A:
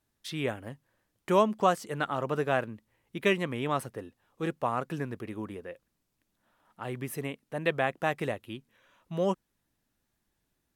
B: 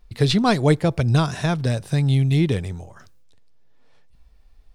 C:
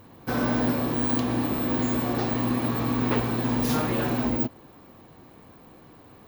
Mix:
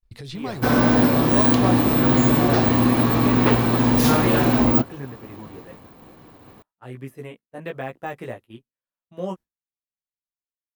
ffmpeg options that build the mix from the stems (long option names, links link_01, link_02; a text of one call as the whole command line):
ffmpeg -i stem1.wav -i stem2.wav -i stem3.wav -filter_complex "[0:a]deesser=1,equalizer=frequency=4300:width=0.35:gain=-3.5,flanger=delay=15:depth=2.5:speed=1,volume=-5.5dB[link_01];[1:a]acompressor=threshold=-23dB:ratio=3,alimiter=level_in=0.5dB:limit=-24dB:level=0:latency=1:release=239,volume=-0.5dB,volume=-5dB[link_02];[2:a]adelay=350,volume=0.5dB[link_03];[link_01][link_02][link_03]amix=inputs=3:normalize=0,agate=range=-33dB:threshold=-44dB:ratio=3:detection=peak,dynaudnorm=framelen=120:gausssize=7:maxgain=8dB" out.wav